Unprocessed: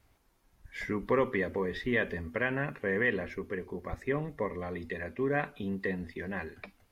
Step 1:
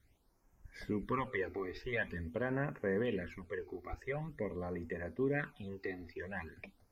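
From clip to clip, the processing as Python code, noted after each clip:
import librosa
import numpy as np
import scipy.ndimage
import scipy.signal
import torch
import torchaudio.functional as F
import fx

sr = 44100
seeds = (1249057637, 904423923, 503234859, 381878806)

y = fx.phaser_stages(x, sr, stages=12, low_hz=160.0, high_hz=3900.0, hz=0.46, feedback_pct=20)
y = y * librosa.db_to_amplitude(-3.0)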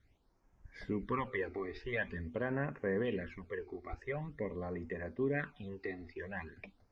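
y = scipy.signal.sosfilt(scipy.signal.butter(2, 4800.0, 'lowpass', fs=sr, output='sos'), x)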